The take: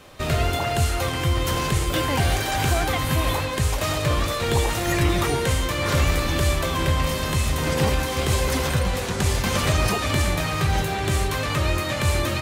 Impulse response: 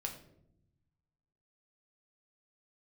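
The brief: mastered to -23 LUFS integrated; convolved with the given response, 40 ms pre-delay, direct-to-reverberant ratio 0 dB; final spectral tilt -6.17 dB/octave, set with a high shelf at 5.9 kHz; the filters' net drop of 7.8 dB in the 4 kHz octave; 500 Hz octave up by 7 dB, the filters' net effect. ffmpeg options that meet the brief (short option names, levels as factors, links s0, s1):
-filter_complex "[0:a]equalizer=f=500:t=o:g=8.5,equalizer=f=4000:t=o:g=-8.5,highshelf=f=5900:g=-6.5,asplit=2[s0][s1];[1:a]atrim=start_sample=2205,adelay=40[s2];[s1][s2]afir=irnorm=-1:irlink=0,volume=1.06[s3];[s0][s3]amix=inputs=2:normalize=0,volume=0.562"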